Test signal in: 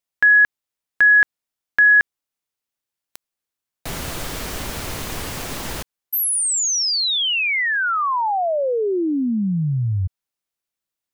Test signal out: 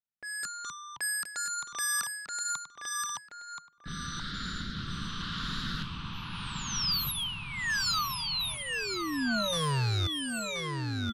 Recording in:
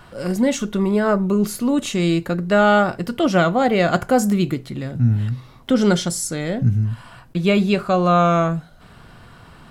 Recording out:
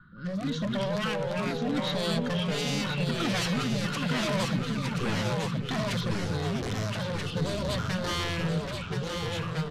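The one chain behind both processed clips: rattling part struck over -19 dBFS, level -12 dBFS; EQ curve 110 Hz 0 dB, 190 Hz +9 dB, 770 Hz -28 dB, 1400 Hz +11 dB, 2500 Hz -11 dB, 3800 Hz +11 dB, 7700 Hz -17 dB; wavefolder -16 dBFS; rotary speaker horn 0.85 Hz; echoes that change speed 0.163 s, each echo -3 st, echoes 2; feedback echo 1.027 s, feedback 30%, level -6 dB; downsampling 32000 Hz; low-pass opened by the level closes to 1300 Hz, open at -20.5 dBFS; gain -8.5 dB

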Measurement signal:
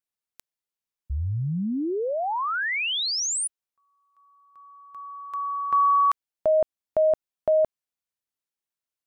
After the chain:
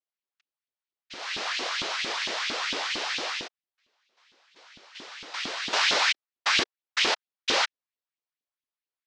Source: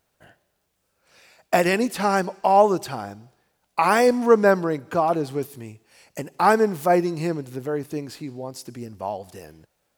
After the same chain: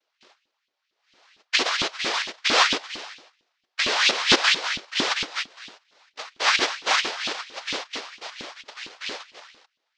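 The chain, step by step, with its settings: noise vocoder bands 1; LFO high-pass saw up 4.4 Hz 250–3300 Hz; LPF 5100 Hz 24 dB/oct; gain -4 dB

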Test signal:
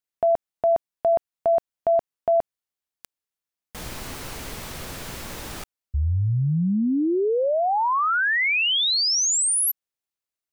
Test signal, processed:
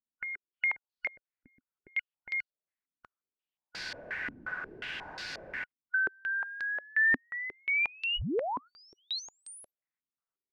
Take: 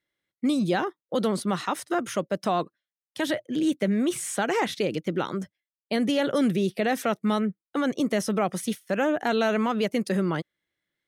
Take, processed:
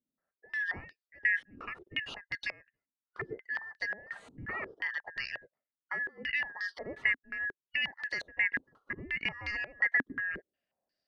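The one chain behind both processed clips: four-band scrambler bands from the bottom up 2143; compressor 2.5:1, threshold -29 dBFS; stepped low-pass 5.6 Hz 260–4500 Hz; gain -7 dB

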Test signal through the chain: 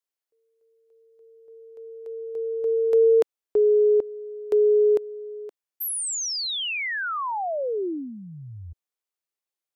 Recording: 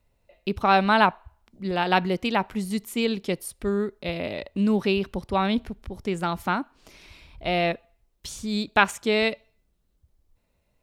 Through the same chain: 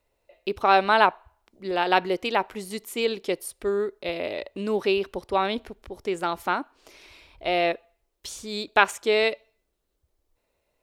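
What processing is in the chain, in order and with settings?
resonant low shelf 270 Hz -9 dB, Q 1.5

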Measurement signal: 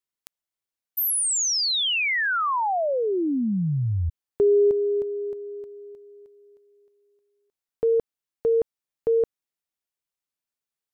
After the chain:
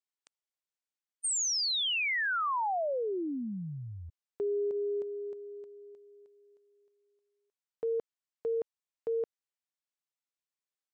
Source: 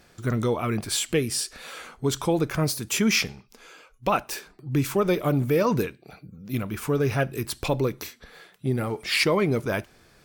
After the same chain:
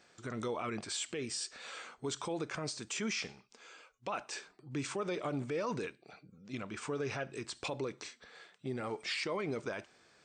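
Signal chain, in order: HPF 400 Hz 6 dB/oct; limiter -21.5 dBFS; brick-wall FIR low-pass 8900 Hz; gain -6 dB

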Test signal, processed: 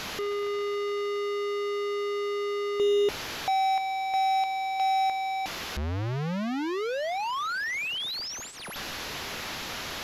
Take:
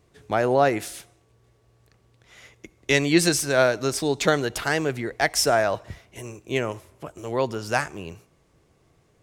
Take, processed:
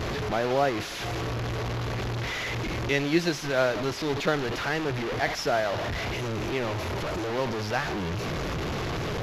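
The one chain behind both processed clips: delta modulation 64 kbps, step -18.5 dBFS; running mean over 5 samples; gain -5 dB

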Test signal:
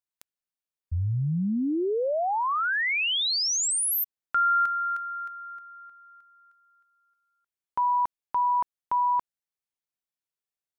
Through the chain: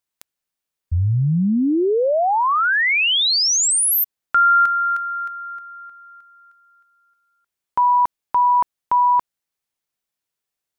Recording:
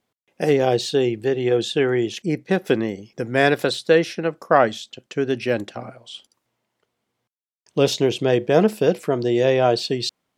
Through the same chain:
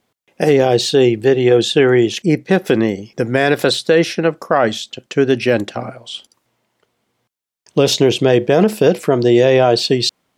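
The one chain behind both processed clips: limiter -11 dBFS; gain +8.5 dB

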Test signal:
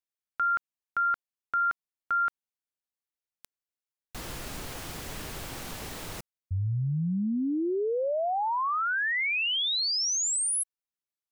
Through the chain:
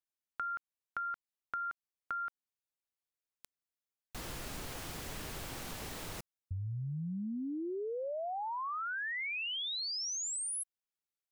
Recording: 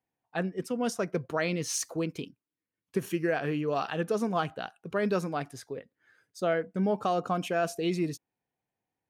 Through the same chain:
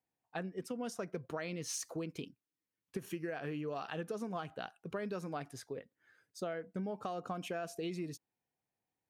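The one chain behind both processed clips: compressor 10:1, threshold -32 dBFS; gain -4 dB

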